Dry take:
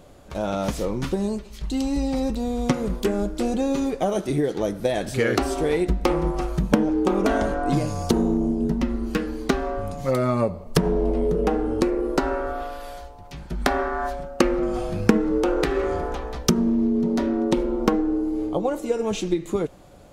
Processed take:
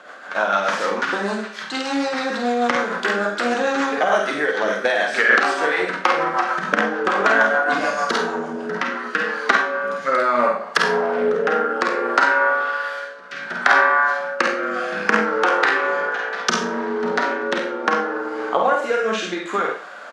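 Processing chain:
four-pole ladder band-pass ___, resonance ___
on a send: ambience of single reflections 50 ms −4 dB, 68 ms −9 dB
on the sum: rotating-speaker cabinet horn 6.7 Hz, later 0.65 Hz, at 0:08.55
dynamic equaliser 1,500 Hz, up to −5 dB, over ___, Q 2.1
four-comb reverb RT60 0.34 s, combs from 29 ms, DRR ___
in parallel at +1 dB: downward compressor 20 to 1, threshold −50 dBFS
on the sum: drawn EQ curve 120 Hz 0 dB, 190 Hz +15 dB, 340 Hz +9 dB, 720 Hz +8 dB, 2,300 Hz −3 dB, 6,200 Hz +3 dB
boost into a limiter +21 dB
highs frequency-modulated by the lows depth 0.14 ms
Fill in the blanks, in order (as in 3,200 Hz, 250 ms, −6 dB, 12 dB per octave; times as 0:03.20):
1,700 Hz, 65%, −48 dBFS, 4.5 dB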